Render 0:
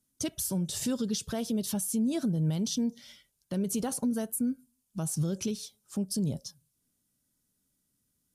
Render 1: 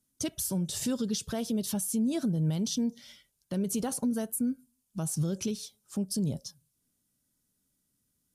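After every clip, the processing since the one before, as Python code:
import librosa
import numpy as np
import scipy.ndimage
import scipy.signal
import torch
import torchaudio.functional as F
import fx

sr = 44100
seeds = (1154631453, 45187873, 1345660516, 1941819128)

y = x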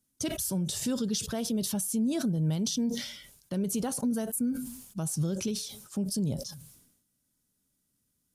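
y = fx.sustainer(x, sr, db_per_s=65.0)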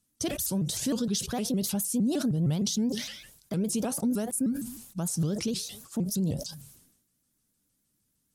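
y = fx.vibrato_shape(x, sr, shape='saw_up', rate_hz=6.5, depth_cents=250.0)
y = y * 10.0 ** (1.5 / 20.0)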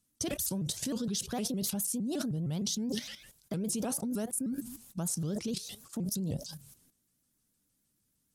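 y = fx.level_steps(x, sr, step_db=11)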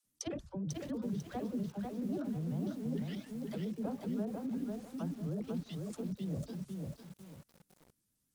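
y = fx.dispersion(x, sr, late='lows', ms=64.0, hz=310.0)
y = fx.env_lowpass_down(y, sr, base_hz=1100.0, full_db=-30.0)
y = fx.echo_crushed(y, sr, ms=496, feedback_pct=35, bits=9, wet_db=-3.0)
y = y * 10.0 ** (-4.0 / 20.0)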